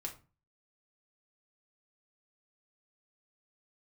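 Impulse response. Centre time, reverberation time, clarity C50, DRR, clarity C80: 13 ms, 0.35 s, 12.0 dB, −0.5 dB, 18.0 dB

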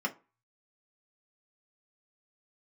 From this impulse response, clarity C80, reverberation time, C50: 25.0 dB, 0.30 s, 18.5 dB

